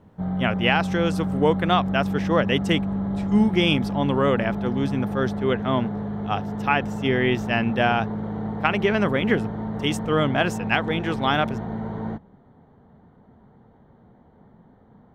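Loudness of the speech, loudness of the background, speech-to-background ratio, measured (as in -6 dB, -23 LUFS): -23.5 LUFS, -28.5 LUFS, 5.0 dB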